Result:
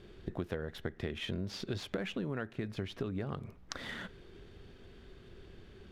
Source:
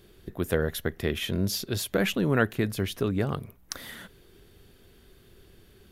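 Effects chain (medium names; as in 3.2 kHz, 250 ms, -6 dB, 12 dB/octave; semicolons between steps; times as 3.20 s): median filter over 5 samples; on a send at -20.5 dB: reverberation RT60 0.55 s, pre-delay 3 ms; on the sum: compression 16:1, threshold -35 dBFS, peak gain reduction 18.5 dB; distance through air 61 m; trim +2 dB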